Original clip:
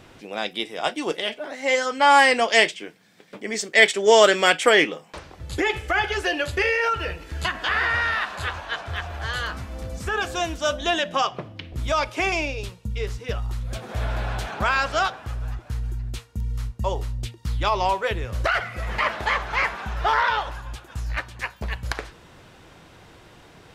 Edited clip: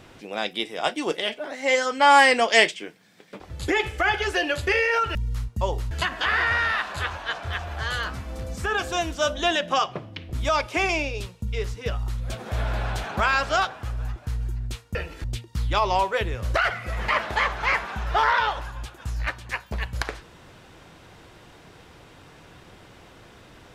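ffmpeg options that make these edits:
-filter_complex "[0:a]asplit=6[a][b][c][d][e][f];[a]atrim=end=3.402[g];[b]atrim=start=5.298:end=7.052[h];[c]atrim=start=16.378:end=17.142[i];[d]atrim=start=7.338:end=16.382[j];[e]atrim=start=7.048:end=7.342[k];[f]atrim=start=17.138[l];[g][h]acrossfade=d=0.004:c1=hsin:c2=hsin[m];[m][i]acrossfade=d=0.004:c1=hsin:c2=hsin[n];[n][j]acrossfade=d=0.004:c1=hsin:c2=hsin[o];[o][k]acrossfade=d=0.004:c1=hsin:c2=hsin[p];[p][l]acrossfade=d=0.004:c1=hsin:c2=hsin"

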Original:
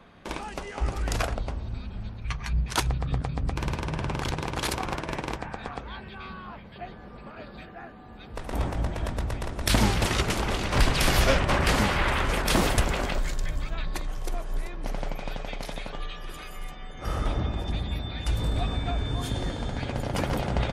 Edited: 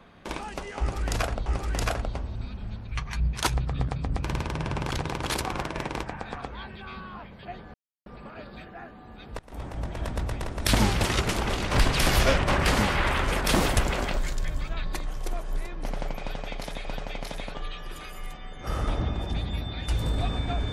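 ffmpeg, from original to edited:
-filter_complex "[0:a]asplit=5[a][b][c][d][e];[a]atrim=end=1.462[f];[b]atrim=start=0.788:end=7.07,asetpts=PTS-STARTPTS,afade=t=out:st=6.278:d=0.004:c=hsin,apad=pad_dur=0.32[g];[c]atrim=start=7.07:end=8.4,asetpts=PTS-STARTPTS,afade=t=in:d=0.004:c=hsin,afade=t=out:st=1.326:d=0.004:c=hsin:silence=0.1[h];[d]atrim=start=8.4:end=15.862,asetpts=PTS-STARTPTS,afade=t=in:d=0.78:silence=0.1[i];[e]atrim=start=15.228[j];[g][h][i]concat=n=3:v=0:a=1[k];[f][k]acrossfade=d=0.004:c1=hsin:c2=hsin[l];[l][j]acrossfade=d=0.004:c1=hsin:c2=hsin"

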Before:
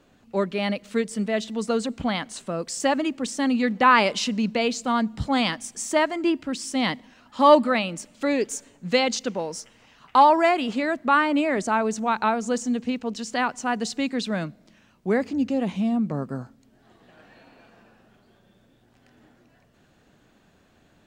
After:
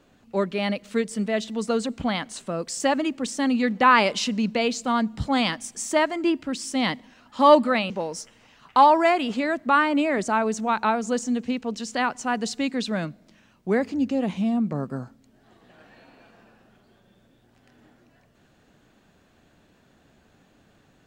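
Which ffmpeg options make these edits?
-filter_complex "[0:a]asplit=2[a][b];[a]atrim=end=7.902[c];[b]atrim=start=9.288[d];[c][d]acrossfade=d=0.004:c1=hsin:c2=hsin"

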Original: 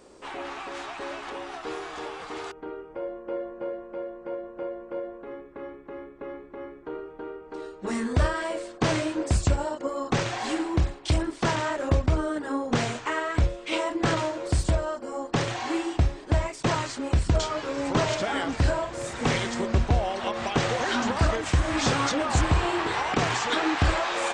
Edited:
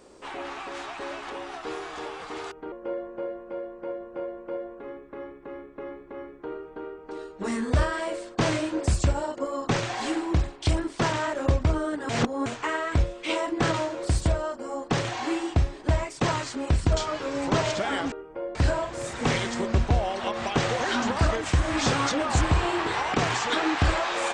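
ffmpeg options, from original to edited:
-filter_complex "[0:a]asplit=6[a][b][c][d][e][f];[a]atrim=end=2.722[g];[b]atrim=start=3.148:end=12.522[h];[c]atrim=start=12.518:end=12.892,asetpts=PTS-STARTPTS,areverse[i];[d]atrim=start=12.888:end=18.552[j];[e]atrim=start=2.718:end=3.152[k];[f]atrim=start=18.548[l];[g][h]acrossfade=d=0.004:c1=hsin:c2=hsin[m];[m][i]acrossfade=d=0.004:c1=hsin:c2=hsin[n];[n][j]acrossfade=d=0.004:c1=hsin:c2=hsin[o];[o][k]acrossfade=d=0.004:c1=hsin:c2=hsin[p];[p][l]acrossfade=d=0.004:c1=hsin:c2=hsin"

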